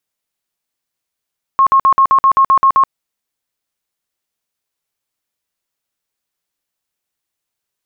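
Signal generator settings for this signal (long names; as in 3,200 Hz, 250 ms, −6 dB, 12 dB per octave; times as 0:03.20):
tone bursts 1,080 Hz, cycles 83, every 0.13 s, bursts 10, −6 dBFS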